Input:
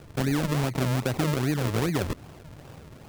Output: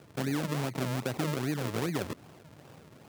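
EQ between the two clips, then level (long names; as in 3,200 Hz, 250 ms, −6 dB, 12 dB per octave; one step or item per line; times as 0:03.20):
high-pass filter 130 Hz 12 dB per octave
−5.0 dB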